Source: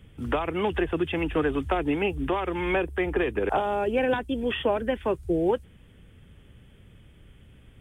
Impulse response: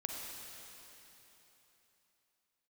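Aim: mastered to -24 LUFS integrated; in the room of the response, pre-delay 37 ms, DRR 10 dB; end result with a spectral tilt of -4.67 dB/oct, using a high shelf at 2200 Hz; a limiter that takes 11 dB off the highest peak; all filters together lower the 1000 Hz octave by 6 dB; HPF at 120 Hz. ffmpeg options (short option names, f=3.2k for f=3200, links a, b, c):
-filter_complex "[0:a]highpass=120,equalizer=f=1k:t=o:g=-7.5,highshelf=f=2.2k:g=-4,alimiter=level_in=2dB:limit=-24dB:level=0:latency=1,volume=-2dB,asplit=2[a][b];[1:a]atrim=start_sample=2205,adelay=37[c];[b][c]afir=irnorm=-1:irlink=0,volume=-11dB[d];[a][d]amix=inputs=2:normalize=0,volume=10dB"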